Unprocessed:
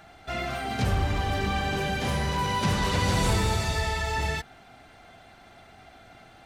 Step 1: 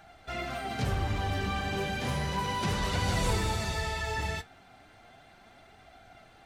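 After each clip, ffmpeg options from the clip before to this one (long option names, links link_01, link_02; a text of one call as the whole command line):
ffmpeg -i in.wav -af "flanger=delay=1.3:depth=9.7:regen=66:speed=0.33:shape=sinusoidal" out.wav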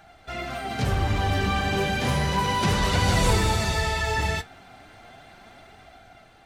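ffmpeg -i in.wav -af "dynaudnorm=framelen=340:gausssize=5:maxgain=5dB,volume=2.5dB" out.wav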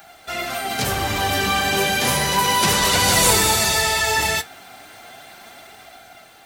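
ffmpeg -i in.wav -af "aemphasis=mode=production:type=bsi,volume=6dB" out.wav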